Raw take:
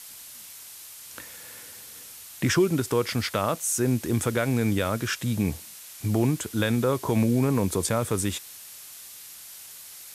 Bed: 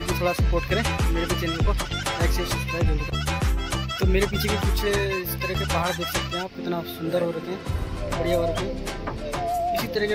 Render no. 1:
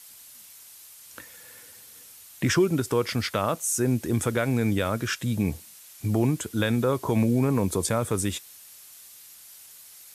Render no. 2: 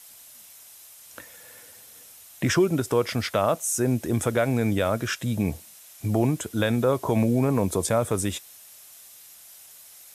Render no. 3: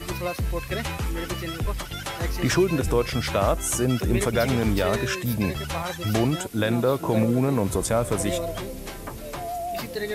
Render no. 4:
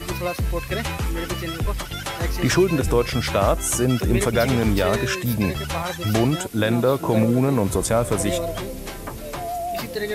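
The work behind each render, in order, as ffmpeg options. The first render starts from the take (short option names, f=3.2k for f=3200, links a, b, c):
-af "afftdn=nr=6:nf=-44"
-af "equalizer=f=650:t=o:w=0.64:g=6.5,bandreject=f=4.5k:w=19"
-filter_complex "[1:a]volume=-5.5dB[a];[0:a][a]amix=inputs=2:normalize=0"
-af "volume=3dB"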